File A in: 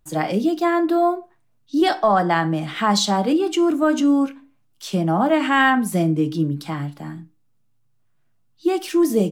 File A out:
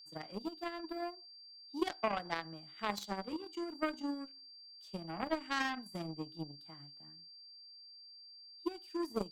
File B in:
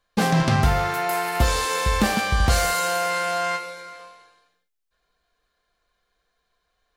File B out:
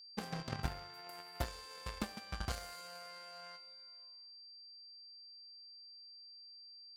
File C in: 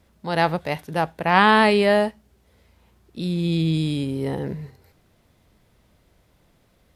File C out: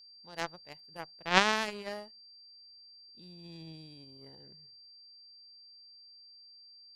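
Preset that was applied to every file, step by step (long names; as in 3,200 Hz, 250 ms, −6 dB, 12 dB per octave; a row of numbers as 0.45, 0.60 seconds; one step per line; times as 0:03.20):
harmonic generator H 3 −10 dB, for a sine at −1 dBFS
transient designer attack +4 dB, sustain −1 dB
steady tone 4,700 Hz −47 dBFS
level −6 dB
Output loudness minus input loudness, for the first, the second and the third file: −20.5, −25.0, −11.0 LU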